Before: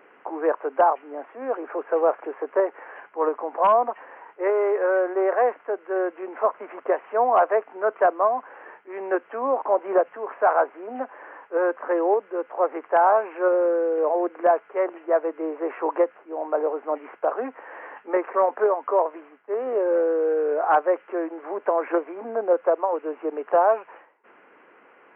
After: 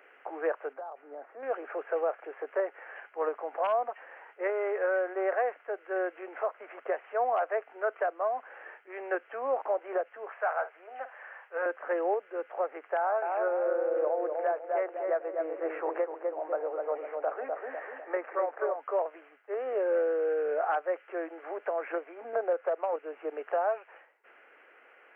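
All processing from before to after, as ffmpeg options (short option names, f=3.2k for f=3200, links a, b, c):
-filter_complex "[0:a]asettb=1/sr,asplit=3[a][b][c];[a]atrim=end=0.734[d];[b]atrim=start=0.73:end=1.43,asetpts=PTS-STARTPTS,afade=t=in:d=0.004:c=qsin,afade=t=out:st=0.696:d=0.004:c=qsin,lowpass=1.3k,acompressor=threshold=-31dB:ratio=10:attack=3.2:release=140:knee=1:detection=peak[e];[c]atrim=start=1.426[f];[d][e]acrossfade=d=0.004:c1=hsin:c2=qsin[g];[g][f]acrossfade=d=0.004:c1=qsin:c2=hsin,asettb=1/sr,asplit=3[h][i][j];[h]atrim=end=10.304[k];[i]atrim=start=10.3:end=11.66,asetpts=PTS-STARTPTS,afade=t=in:d=0.004:c=qsin,afade=t=out:st=1.356:d=0.004:c=qsin,highpass=670,asplit=2[l][m];[m]adelay=50,volume=-13.5dB[n];[l][n]amix=inputs=2:normalize=0,atrim=end_sample=59976[o];[j]atrim=start=11.656[p];[k][o]acrossfade=d=0.004:c1=hsin:c2=qsin[q];[q][p]acrossfade=d=0.004:c1=qsin:c2=hsin,asettb=1/sr,asplit=3[r][s][t];[r]atrim=end=12.974[u];[s]atrim=start=12.97:end=18.8,asetpts=PTS-STARTPTS,afade=t=in:d=0.004:c=qsin,afade=t=out:st=5.826:d=0.004:c=qsin,highpass=240,lowpass=2.4k,asplit=2[v][w];[w]adelay=250,lowpass=f=1.1k:p=1,volume=-3.5dB,asplit=2[x][y];[y]adelay=250,lowpass=f=1.1k:p=1,volume=0.5,asplit=2[z][aa];[aa]adelay=250,lowpass=f=1.1k:p=1,volume=0.5,asplit=2[ab][ac];[ac]adelay=250,lowpass=f=1.1k:p=1,volume=0.5,asplit=2[ad][ae];[ae]adelay=250,lowpass=f=1.1k:p=1,volume=0.5,asplit=2[af][ag];[ag]adelay=250,lowpass=f=1.1k:p=1,volume=0.5,asplit=2[ah][ai];[ai]adelay=250,lowpass=f=1.1k:p=1,volume=0.5[aj];[v][x][z][ab][ad][af][ah][aj]amix=inputs=8:normalize=0,atrim=end_sample=257103[ak];[t]atrim=start=18.796[al];[u][ak]acrossfade=d=0.004:c1=hsin:c2=qsin[am];[am][al]acrossfade=d=0.004:c1=qsin:c2=hsin,asettb=1/sr,asplit=3[an][ao][ap];[an]atrim=end=22.334[aq];[ao]atrim=start=22.33:end=22.96,asetpts=PTS-STARTPTS,afade=t=in:d=0.004:c=qsin,afade=t=out:st=0.626:d=0.004:c=qsin,highpass=290,lowpass=2.4k,acontrast=57[ar];[ap]atrim=start=22.956[as];[aq][ar]acrossfade=d=0.004:c1=hsin:c2=qsin[at];[at][as]acrossfade=d=0.004:c1=qsin:c2=hsin,highpass=620,equalizer=f=1k:w=2.9:g=-11.5,alimiter=limit=-20dB:level=0:latency=1:release=477"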